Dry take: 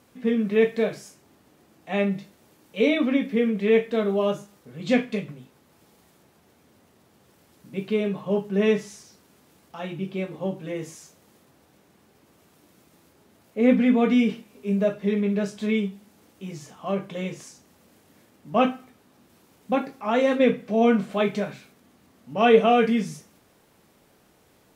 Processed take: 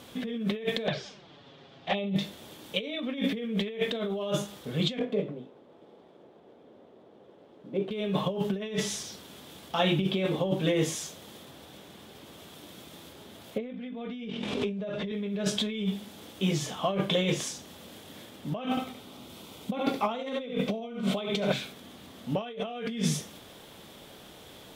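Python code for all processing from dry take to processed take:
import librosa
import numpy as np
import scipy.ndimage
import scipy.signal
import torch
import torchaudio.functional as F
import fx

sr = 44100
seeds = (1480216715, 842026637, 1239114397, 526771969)

y = fx.chain(x, sr, fx.lowpass(hz=4800.0, slope=24),
    fx.peak_eq(hz=290.0, db=-7.0, octaves=0.32),
    fx.env_flanger(rest_ms=8.1, full_db=-25.0), at=(0.87, 2.16))
y = fx.chain(y, sr, fx.dead_time(dead_ms=0.078),
    fx.bandpass_q(hz=450.0, q=1.3), at=(4.99, 7.91))
y = fx.chain(y, sr, fx.quant_float(bits=8),
    fx.air_absorb(metres=100.0),
    fx.sustainer(db_per_s=20.0), at=(13.58, 15.12))
y = fx.chain(y, sr, fx.notch(hz=1700.0, q=5.6),
    fx.echo_single(ms=72, db=-6.0), at=(18.7, 21.52))
y = fx.peak_eq(y, sr, hz=3400.0, db=12.5, octaves=0.43)
y = fx.over_compress(y, sr, threshold_db=-32.0, ratio=-1.0)
y = fx.peak_eq(y, sr, hz=590.0, db=2.5, octaves=0.77)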